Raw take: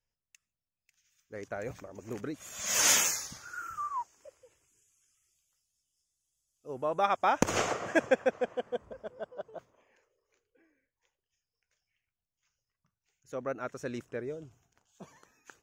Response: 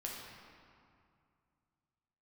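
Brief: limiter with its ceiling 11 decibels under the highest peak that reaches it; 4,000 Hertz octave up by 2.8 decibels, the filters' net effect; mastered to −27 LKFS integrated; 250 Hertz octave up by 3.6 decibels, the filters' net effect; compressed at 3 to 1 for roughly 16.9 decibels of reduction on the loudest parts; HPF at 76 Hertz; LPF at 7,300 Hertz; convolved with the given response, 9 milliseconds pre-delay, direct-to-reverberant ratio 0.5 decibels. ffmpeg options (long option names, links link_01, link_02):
-filter_complex "[0:a]highpass=76,lowpass=7300,equalizer=frequency=250:width_type=o:gain=4.5,equalizer=frequency=4000:width_type=o:gain=4.5,acompressor=threshold=-44dB:ratio=3,alimiter=level_in=12.5dB:limit=-24dB:level=0:latency=1,volume=-12.5dB,asplit=2[link_01][link_02];[1:a]atrim=start_sample=2205,adelay=9[link_03];[link_02][link_03]afir=irnorm=-1:irlink=0,volume=-0.5dB[link_04];[link_01][link_04]amix=inputs=2:normalize=0,volume=18.5dB"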